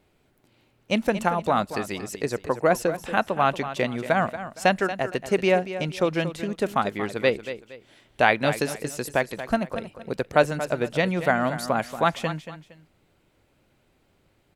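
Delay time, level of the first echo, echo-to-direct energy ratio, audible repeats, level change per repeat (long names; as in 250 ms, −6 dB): 232 ms, −12.0 dB, −11.5 dB, 2, −10.5 dB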